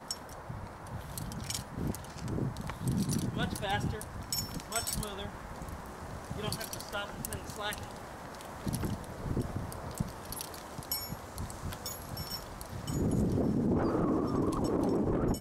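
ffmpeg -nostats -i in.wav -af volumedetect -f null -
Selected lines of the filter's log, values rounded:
mean_volume: -35.1 dB
max_volume: -15.9 dB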